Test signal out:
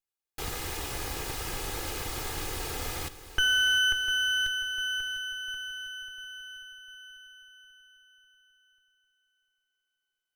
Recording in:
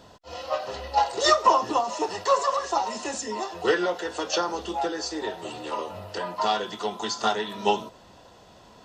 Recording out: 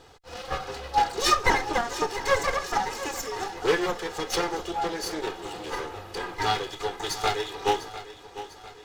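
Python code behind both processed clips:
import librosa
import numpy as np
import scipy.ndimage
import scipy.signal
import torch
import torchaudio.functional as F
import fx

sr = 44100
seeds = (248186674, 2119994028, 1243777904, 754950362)

p1 = fx.lower_of_two(x, sr, delay_ms=2.4)
y = p1 + fx.echo_feedback(p1, sr, ms=700, feedback_pct=48, wet_db=-14.0, dry=0)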